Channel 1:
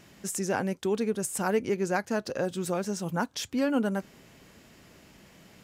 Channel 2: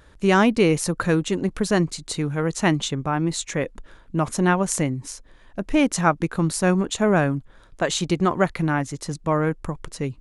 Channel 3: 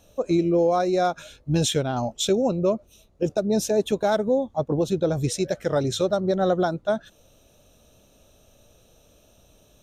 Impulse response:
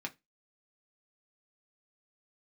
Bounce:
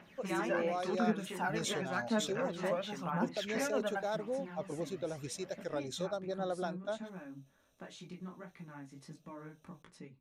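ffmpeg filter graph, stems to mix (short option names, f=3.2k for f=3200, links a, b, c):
-filter_complex "[0:a]aphaser=in_gain=1:out_gain=1:delay=1.9:decay=0.66:speed=0.92:type=triangular,volume=-4dB,asplit=3[a][b][c];[b]volume=-11dB[d];[1:a]acompressor=threshold=-26dB:ratio=12,flanger=delay=16:depth=6.5:speed=1.4,volume=0dB,asplit=2[e][f];[f]volume=-16dB[g];[2:a]agate=range=-33dB:threshold=-52dB:ratio=3:detection=peak,lowshelf=f=270:g=-10,volume=-13dB[h];[c]apad=whole_len=450231[i];[e][i]sidechaingate=range=-33dB:threshold=-44dB:ratio=16:detection=peak[j];[a][j]amix=inputs=2:normalize=0,highpass=620,lowpass=2.6k,alimiter=level_in=4.5dB:limit=-24dB:level=0:latency=1:release=310,volume=-4.5dB,volume=0dB[k];[3:a]atrim=start_sample=2205[l];[d][g]amix=inputs=2:normalize=0[m];[m][l]afir=irnorm=-1:irlink=0[n];[h][k][n]amix=inputs=3:normalize=0"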